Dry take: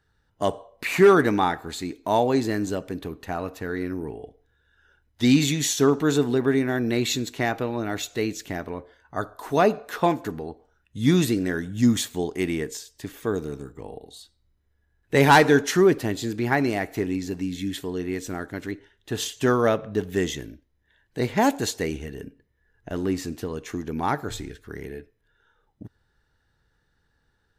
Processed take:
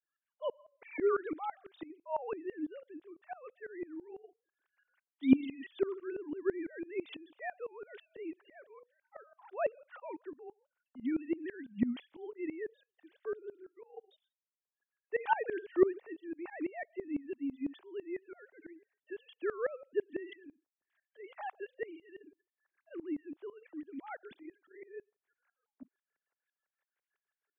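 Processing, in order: sine-wave speech; dB-ramp tremolo swelling 6 Hz, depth 21 dB; gain -6.5 dB

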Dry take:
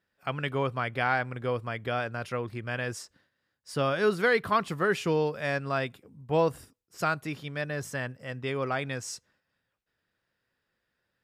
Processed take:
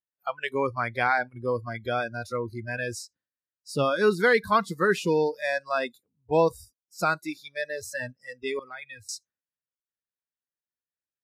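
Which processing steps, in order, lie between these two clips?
spectral noise reduction 29 dB; 8.59–9.09 EQ curve 110 Hz 0 dB, 320 Hz -27 dB, 2600 Hz -3 dB, 6300 Hz -28 dB, 9900 Hz -11 dB; gain +3.5 dB

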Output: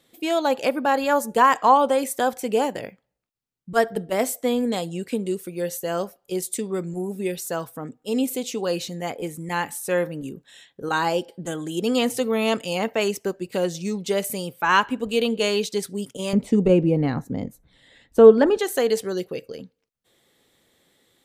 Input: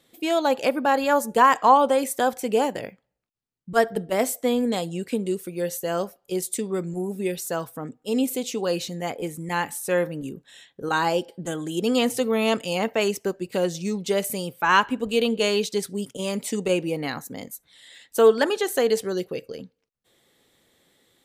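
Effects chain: 16.33–18.59 tilt -4.5 dB/oct

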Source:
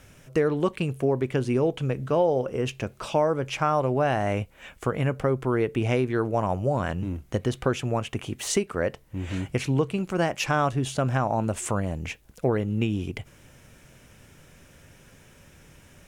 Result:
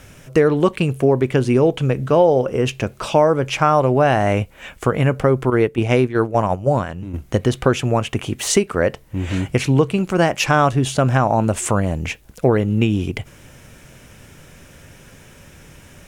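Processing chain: 5.5–7.14 gate -24 dBFS, range -9 dB; gain +8.5 dB

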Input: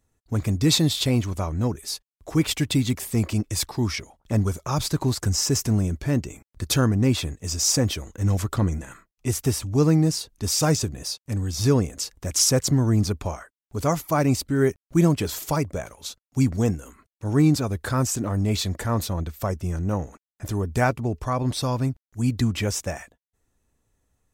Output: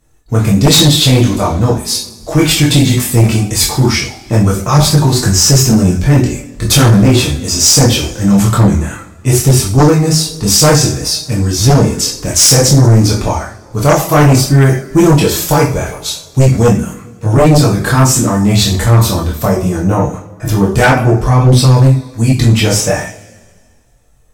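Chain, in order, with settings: two-slope reverb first 0.38 s, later 1.8 s, from -21 dB, DRR -1 dB; chorus voices 4, 0.18 Hz, delay 24 ms, depth 3.3 ms; sine folder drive 11 dB, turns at -3.5 dBFS; gain +1 dB

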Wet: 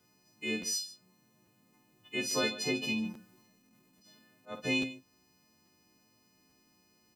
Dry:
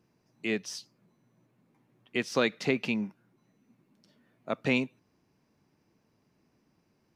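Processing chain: frequency quantiser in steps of 3 st; dynamic EQ 1800 Hz, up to -6 dB, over -40 dBFS, Q 0.98; in parallel at -1.5 dB: compressor, threshold -43 dBFS, peak gain reduction 20 dB; on the sum: requantised 12-bit, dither none; 2.94–4.58 transient shaper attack -11 dB, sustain +5 dB; on a send: tapped delay 49/55/64/145 ms -8.5/-17.5/-17/-15.5 dB; on the sum: crackling interface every 0.84 s, samples 512, repeat, from 0.61; gain -6 dB

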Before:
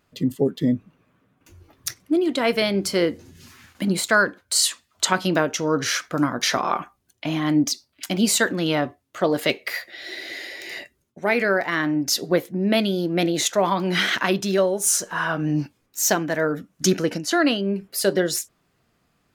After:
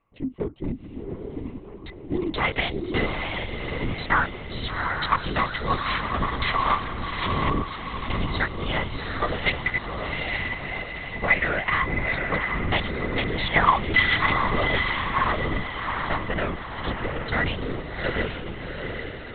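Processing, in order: Wiener smoothing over 25 samples; recorder AGC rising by 7.9 dB/s; HPF 150 Hz 12 dB/oct; tilt shelf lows -6 dB, about 1400 Hz; in parallel at +3 dB: compressor, threshold -30 dBFS, peak gain reduction 18 dB; on the sum: painted sound fall, 13.54–13.77, 730–2300 Hz -19 dBFS; small resonant body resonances 1100/2000 Hz, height 15 dB, ringing for 35 ms; on a send: diffused feedback echo 0.758 s, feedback 49%, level -3.5 dB; on the sum: LPC vocoder at 8 kHz whisper; gain -7 dB

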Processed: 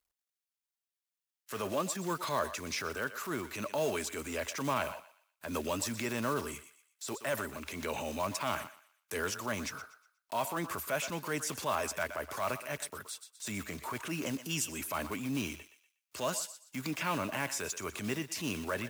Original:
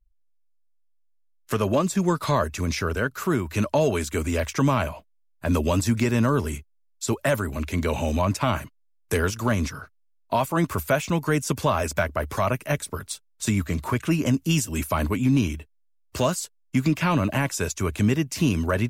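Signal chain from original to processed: block floating point 5-bit; thinning echo 0.121 s, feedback 23%, high-pass 620 Hz, level -14.5 dB; transient shaper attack -6 dB, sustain +3 dB; HPF 460 Hz 6 dB/oct; mismatched tape noise reduction encoder only; gain -7 dB

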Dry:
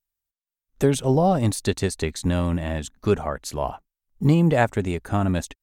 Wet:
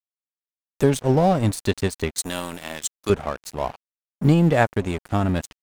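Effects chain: 2.18–3.1 RIAA curve recording; crossover distortion -34.5 dBFS; vibrato 0.56 Hz 16 cents; gain +2 dB

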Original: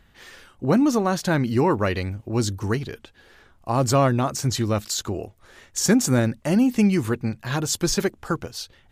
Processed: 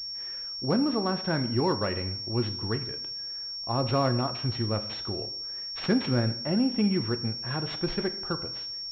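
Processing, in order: bit-crush 10-bit; two-slope reverb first 0.65 s, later 2.5 s, from -25 dB, DRR 8.5 dB; pulse-width modulation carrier 5500 Hz; gain -7 dB

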